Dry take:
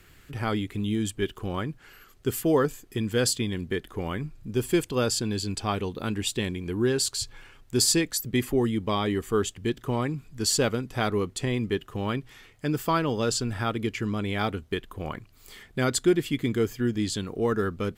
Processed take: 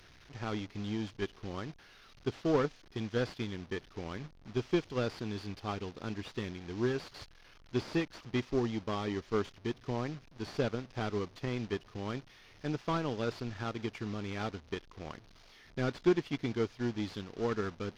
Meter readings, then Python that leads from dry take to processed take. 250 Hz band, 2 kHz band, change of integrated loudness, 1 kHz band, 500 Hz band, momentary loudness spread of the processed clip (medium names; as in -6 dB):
-8.0 dB, -8.5 dB, -9.0 dB, -8.5 dB, -7.5 dB, 11 LU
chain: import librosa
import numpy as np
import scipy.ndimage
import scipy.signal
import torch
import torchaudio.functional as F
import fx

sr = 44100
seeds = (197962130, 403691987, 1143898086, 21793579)

y = fx.delta_mod(x, sr, bps=32000, step_db=-35.5)
y = fx.power_curve(y, sr, exponent=1.4)
y = y * librosa.db_to_amplitude(-4.0)